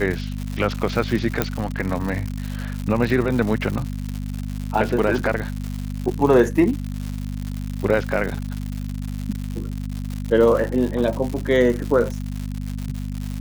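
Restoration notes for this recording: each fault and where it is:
crackle 180 per s -26 dBFS
hum 50 Hz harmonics 5 -28 dBFS
1.42 s: pop -4 dBFS

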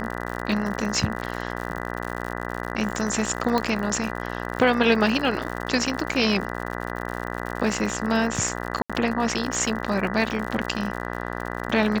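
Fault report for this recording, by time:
buzz 60 Hz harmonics 33 -31 dBFS
crackle 84 per s -29 dBFS
3.58 s: pop -10 dBFS
8.82–8.90 s: dropout 76 ms

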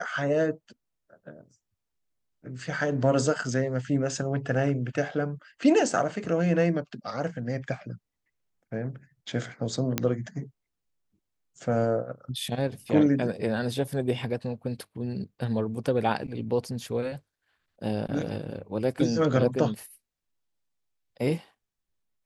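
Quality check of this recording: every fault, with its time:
9.98 s: pop -8 dBFS

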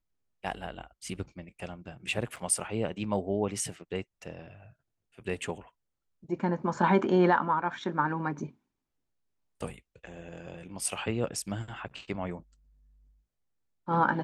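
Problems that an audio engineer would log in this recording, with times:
2.36–2.37 s: dropout 5.2 ms

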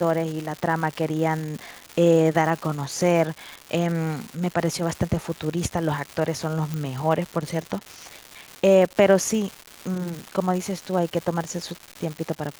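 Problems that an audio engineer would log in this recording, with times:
crackle 360 per s -29 dBFS
6.74 s: pop -16 dBFS

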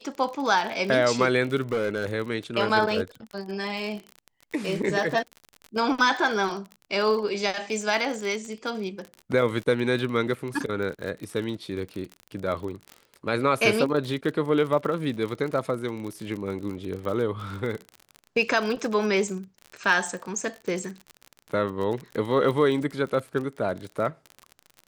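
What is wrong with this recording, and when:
crackle 42 per s -31 dBFS
1.72–2.07 s: clipped -21.5 dBFS

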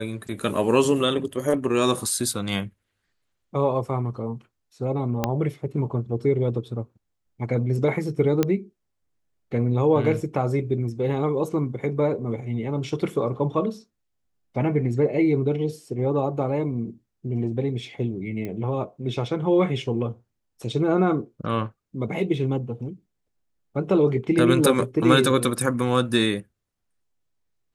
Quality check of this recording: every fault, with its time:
5.24 s: pop -8 dBFS
8.43 s: pop -8 dBFS
18.45 s: pop -20 dBFS

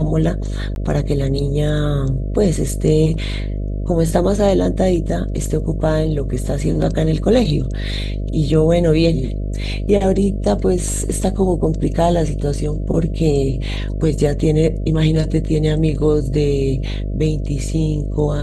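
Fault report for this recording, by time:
buzz 50 Hz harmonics 13 -22 dBFS
0.75–0.76 s: dropout 11 ms

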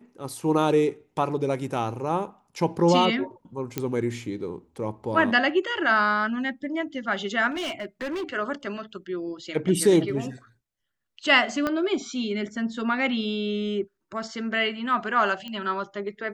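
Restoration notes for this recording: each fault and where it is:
3.78 s: pop -11 dBFS
7.50–8.33 s: clipped -27 dBFS
11.67 s: pop -13 dBFS
15.48 s: pop -23 dBFS

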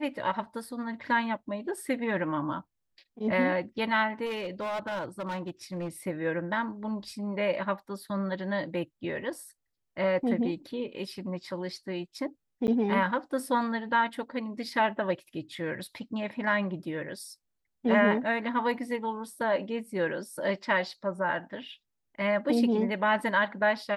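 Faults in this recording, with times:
4.25–5.89 s: clipped -29.5 dBFS
12.67–12.68 s: dropout 9.6 ms

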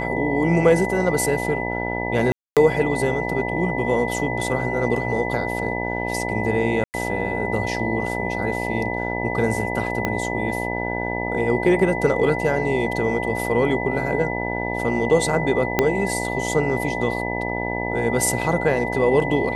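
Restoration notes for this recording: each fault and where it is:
buzz 60 Hz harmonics 16 -27 dBFS
whine 2 kHz -28 dBFS
2.32–2.57 s: dropout 247 ms
6.84–6.94 s: dropout 99 ms
10.05 s: pop -8 dBFS
15.79 s: pop -3 dBFS

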